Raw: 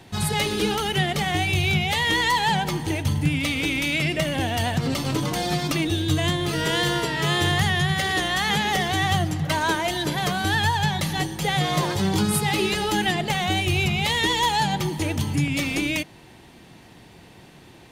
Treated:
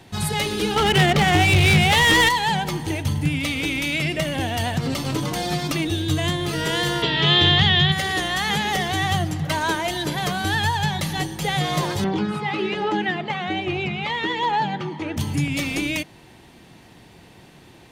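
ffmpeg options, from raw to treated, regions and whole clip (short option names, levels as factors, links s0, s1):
-filter_complex "[0:a]asettb=1/sr,asplit=3[s0][s1][s2];[s0]atrim=end=0.764[s3];[s1]atrim=start=0.76:end=2.29,asetpts=PTS-STARTPTS,afade=t=in:d=0.004:c=qsin,afade=t=out:st=1.526:d=0.004:c=qsin,aeval=exprs='0.299*sin(PI/2*1.78*val(0)/0.299)':c=same,adynamicsmooth=sensitivity=1.5:basefreq=1500[s4];[s2]atrim=start=2.286[s5];[s3][s4]acrossfade=d=0.004:c1=hsin:c2=qsin[s6];[s6][s5]acrossfade=d=0.004:c1=qsin:c2=hsin,asettb=1/sr,asplit=3[s7][s8][s9];[s7]atrim=end=7.024[s10];[s8]atrim=start=7.02:end=7.92,asetpts=PTS-STARTPTS,afade=t=in:d=0.004:c=qsin,afade=t=out:st=0.896:d=0.004:c=qsin,lowpass=f=3500:t=q:w=3.9,equalizer=f=170:w=0.36:g=3.5[s11];[s9]atrim=start=7.916[s12];[s10][s11]acrossfade=d=0.004:c1=hsin:c2=qsin[s13];[s13][s12]acrossfade=d=0.004:c1=qsin:c2=hsin,asettb=1/sr,asplit=3[s14][s15][s16];[s14]atrim=end=12.044[s17];[s15]atrim=start=12.04:end=15.17,asetpts=PTS-STARTPTS,afade=t=in:d=0.004:c=qsin,afade=t=out:st=3.126:d=0.004:c=qsin,highpass=220,lowpass=2400,aphaser=in_gain=1:out_gain=1:delay=1:decay=0.33:speed=1.2:type=triangular[s18];[s16]atrim=start=15.166[s19];[s17][s18]acrossfade=d=0.004:c1=hsin:c2=qsin[s20];[s20][s19]acrossfade=d=0.004:c1=qsin:c2=hsin"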